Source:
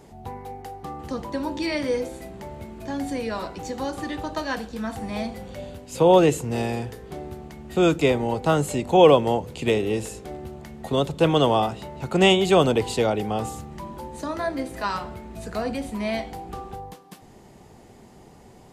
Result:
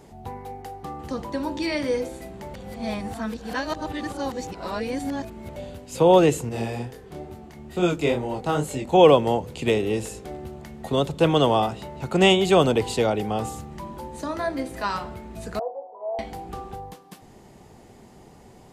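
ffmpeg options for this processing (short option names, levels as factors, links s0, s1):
-filter_complex "[0:a]asettb=1/sr,asplit=3[s0][s1][s2];[s0]atrim=end=6.494[s3];[s1]atrim=start=6.49:end=8.94,asetpts=PTS-STARTPTS,afade=t=in:d=0.004:c=qsin,afade=t=out:st=2.446:d=0.004:c=qsin,flanger=delay=22.5:depth=5:speed=2.2[s4];[s2]atrim=start=8.936[s5];[s3][s4]acrossfade=d=0.004:c1=hsin:c2=qsin[s6];[s6][s5]acrossfade=d=0.004:c1=qsin:c2=hsin,asettb=1/sr,asplit=3[s7][s8][s9];[s7]atrim=end=15.594[s10];[s8]atrim=start=15.59:end=16.19,asetpts=PTS-STARTPTS,afade=t=in:d=0.004:c=qsin,afade=t=out:st=0.596:d=0.004:c=qsin,asuperpass=centerf=660:order=8:qfactor=1.3[s11];[s9]atrim=start=16.186[s12];[s10][s11]acrossfade=d=0.004:c1=hsin:c2=qsin[s13];[s13][s12]acrossfade=d=0.004:c1=qsin:c2=hsin,asplit=3[s14][s15][s16];[s14]atrim=end=2.542[s17];[s15]atrim=start=2.538:end=5.562,asetpts=PTS-STARTPTS,areverse[s18];[s16]atrim=start=5.558[s19];[s17][s18]acrossfade=d=0.004:c1=hsin:c2=hsin[s20];[s20][s19]acrossfade=d=0.004:c1=hsin:c2=hsin"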